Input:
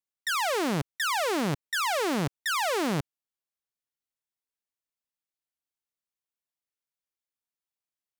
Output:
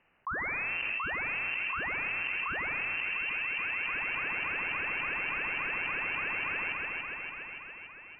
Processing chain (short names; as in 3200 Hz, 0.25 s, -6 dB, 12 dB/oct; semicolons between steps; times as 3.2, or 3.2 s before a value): repeats that get brighter 0.286 s, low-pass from 200 Hz, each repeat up 1 oct, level -3 dB; on a send at -9 dB: reverb, pre-delay 3 ms; on the sum: inverted band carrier 2900 Hz; fast leveller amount 100%; gain -8.5 dB